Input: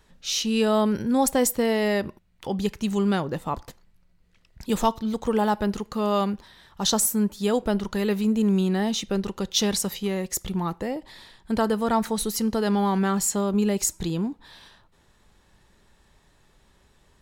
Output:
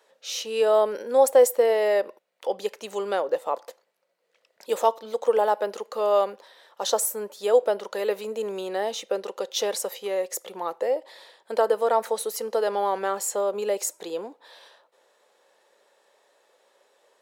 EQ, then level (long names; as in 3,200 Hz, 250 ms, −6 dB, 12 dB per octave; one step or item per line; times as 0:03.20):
dynamic equaliser 4,700 Hz, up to −4 dB, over −38 dBFS, Q 0.83
four-pole ladder high-pass 470 Hz, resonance 65%
+9.0 dB